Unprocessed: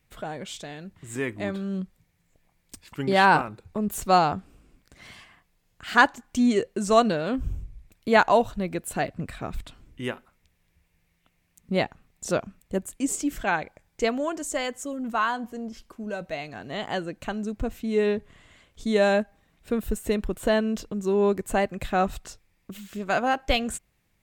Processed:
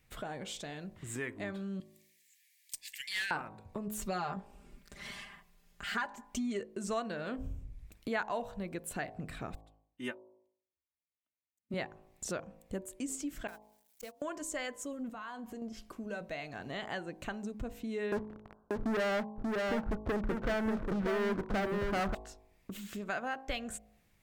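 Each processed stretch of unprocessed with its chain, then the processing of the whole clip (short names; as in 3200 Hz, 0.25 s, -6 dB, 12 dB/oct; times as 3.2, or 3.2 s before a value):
1.8–3.31 steep high-pass 1700 Hz 96 dB/oct + high shelf 3100 Hz +11 dB + tube stage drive 20 dB, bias 0.2
3.99–6.61 comb 5 ms, depth 85% + compressor 2.5:1, threshold -19 dBFS
9.55–11.74 HPF 110 Hz + comb 3.3 ms, depth 86% + upward expander 2.5:1, over -48 dBFS
13.47–14.22 switching spikes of -18.5 dBFS + gate -22 dBFS, range -43 dB + compressor 8:1, threshold -41 dBFS
15.09–15.62 notch 5700 Hz, Q 15 + compressor 5:1, threshold -38 dBFS
18.12–22.15 steep low-pass 1500 Hz 96 dB/oct + sample leveller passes 5 + echo 0.586 s -5 dB
whole clip: de-hum 53.33 Hz, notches 21; dynamic EQ 1700 Hz, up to +6 dB, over -41 dBFS, Q 1.7; compressor 2.5:1, threshold -41 dBFS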